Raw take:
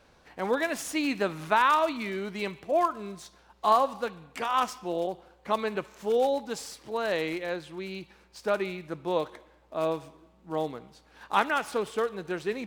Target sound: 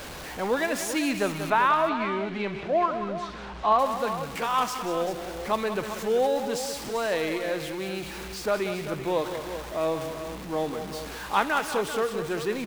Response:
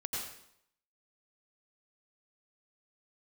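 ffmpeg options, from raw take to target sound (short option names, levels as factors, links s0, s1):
-filter_complex "[0:a]aeval=exprs='val(0)+0.5*0.02*sgn(val(0))':c=same,asettb=1/sr,asplit=3[s0][s1][s2];[s0]atrim=end=1.504[s3];[s1]atrim=start=1.5:end=3.79,asetpts=PTS-STARTPTS,afade=t=in:d=0.004:c=qsin,afade=t=out:st=2.286:d=0.004:c=qsin,lowpass=3100[s4];[s2]atrim=start=3.786[s5];[s3][s4]acrossfade=d=0.004:c1=hsin:c2=qsin[s6];[s6][s5]acrossfade=d=0.004:c1=qsin:c2=hsin,aecho=1:1:186|389:0.299|0.282"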